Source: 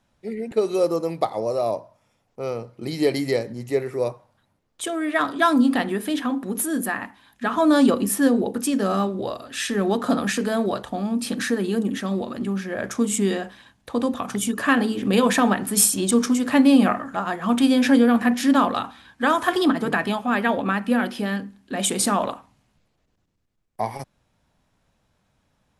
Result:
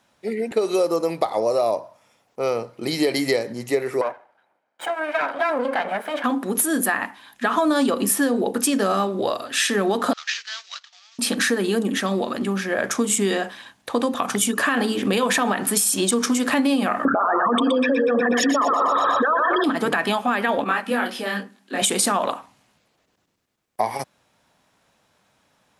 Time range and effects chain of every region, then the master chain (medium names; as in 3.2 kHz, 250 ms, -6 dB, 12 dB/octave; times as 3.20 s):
4.01–6.24 s: comb filter that takes the minimum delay 1.3 ms + three-band isolator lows -21 dB, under 260 Hz, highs -18 dB, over 2.4 kHz + compression 3:1, threshold -25 dBFS
10.13–11.19 s: CVSD coder 32 kbps + Bessel high-pass 2.6 kHz, order 4 + gate -46 dBFS, range -9 dB
17.05–19.64 s: resonances exaggerated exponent 3 + two-band feedback delay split 460 Hz, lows 86 ms, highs 121 ms, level -5.5 dB + level flattener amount 100%
20.64–21.82 s: high-pass 210 Hz + detune thickener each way 34 cents
whole clip: high-pass 440 Hz 6 dB/octave; peak limiter -14 dBFS; compression, threshold -25 dBFS; trim +8.5 dB